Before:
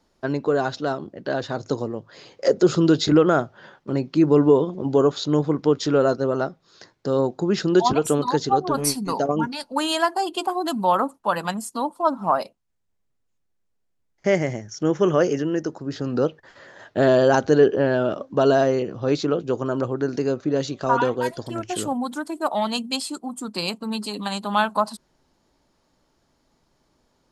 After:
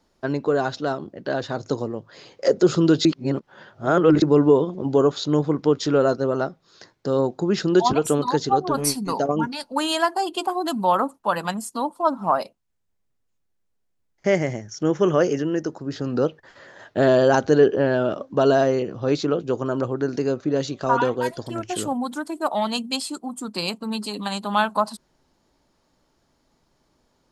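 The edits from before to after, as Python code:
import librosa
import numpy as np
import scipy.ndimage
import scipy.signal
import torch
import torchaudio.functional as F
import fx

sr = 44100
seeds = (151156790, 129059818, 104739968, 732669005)

y = fx.edit(x, sr, fx.reverse_span(start_s=3.05, length_s=1.17), tone=tone)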